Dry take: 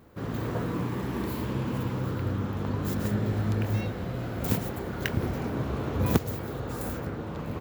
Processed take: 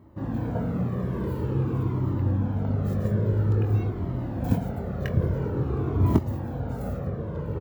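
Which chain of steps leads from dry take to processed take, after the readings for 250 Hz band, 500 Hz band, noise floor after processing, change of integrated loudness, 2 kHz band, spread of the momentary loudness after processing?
+2.0 dB, +1.5 dB, -33 dBFS, +3.5 dB, -6.0 dB, 8 LU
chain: high-pass 55 Hz; tilt shelf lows +9 dB, about 1.3 kHz; doubling 22 ms -10.5 dB; Shepard-style flanger falling 0.49 Hz

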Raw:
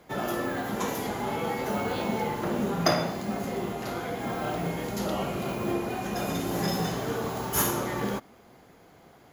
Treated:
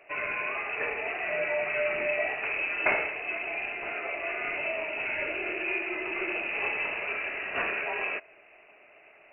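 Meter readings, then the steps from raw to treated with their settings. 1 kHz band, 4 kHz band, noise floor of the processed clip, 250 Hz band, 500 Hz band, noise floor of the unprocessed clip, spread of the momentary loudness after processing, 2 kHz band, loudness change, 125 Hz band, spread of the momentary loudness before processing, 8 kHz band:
-5.5 dB, -7.5 dB, -56 dBFS, -14.5 dB, -2.5 dB, -55 dBFS, 4 LU, +9.0 dB, 0.0 dB, -22.5 dB, 7 LU, under -40 dB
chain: frequency inversion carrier 2.8 kHz; small resonant body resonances 420/600 Hz, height 18 dB, ringing for 25 ms; trim -4.5 dB

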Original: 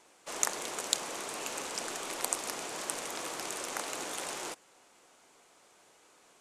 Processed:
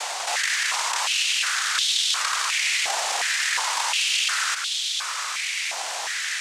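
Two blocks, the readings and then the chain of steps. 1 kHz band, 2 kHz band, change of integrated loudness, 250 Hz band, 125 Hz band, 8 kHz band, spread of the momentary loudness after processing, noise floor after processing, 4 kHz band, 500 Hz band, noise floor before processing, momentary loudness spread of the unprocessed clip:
+12.0 dB, +19.0 dB, +13.0 dB, under -10 dB, under -10 dB, +11.0 dB, 6 LU, -30 dBFS, +18.5 dB, +1.0 dB, -63 dBFS, 6 LU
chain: spectral levelling over time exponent 0.2; noise-vocoded speech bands 3; step-sequenced high-pass 2.8 Hz 750–3400 Hz

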